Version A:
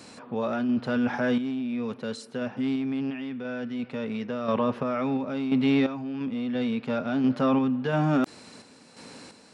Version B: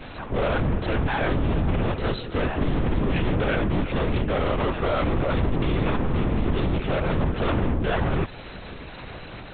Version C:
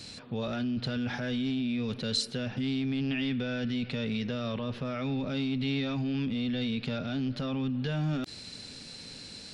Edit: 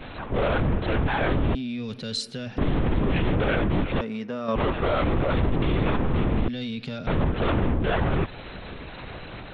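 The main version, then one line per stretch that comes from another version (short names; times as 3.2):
B
1.55–2.58 from C
4.01–4.56 from A
6.48–7.07 from C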